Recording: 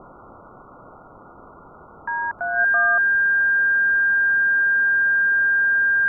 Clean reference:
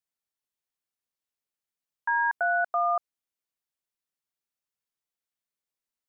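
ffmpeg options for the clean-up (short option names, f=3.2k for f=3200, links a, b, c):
-filter_complex "[0:a]bandreject=f=1.6k:w=30,asplit=3[a][b][c];[a]afade=t=out:st=3.11:d=0.02[d];[b]highpass=f=140:w=0.5412,highpass=f=140:w=1.3066,afade=t=in:st=3.11:d=0.02,afade=t=out:st=3.23:d=0.02[e];[c]afade=t=in:st=3.23:d=0.02[f];[d][e][f]amix=inputs=3:normalize=0,asplit=3[g][h][i];[g]afade=t=out:st=3.9:d=0.02[j];[h]highpass=f=140:w=0.5412,highpass=f=140:w=1.3066,afade=t=in:st=3.9:d=0.02,afade=t=out:st=4.02:d=0.02[k];[i]afade=t=in:st=4.02:d=0.02[l];[j][k][l]amix=inputs=3:normalize=0,afwtdn=0.022"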